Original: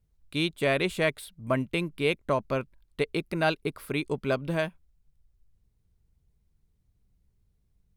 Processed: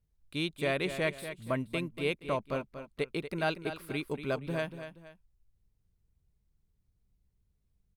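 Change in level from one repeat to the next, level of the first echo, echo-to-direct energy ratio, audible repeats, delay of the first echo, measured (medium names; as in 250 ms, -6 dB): -9.0 dB, -10.5 dB, -10.0 dB, 2, 237 ms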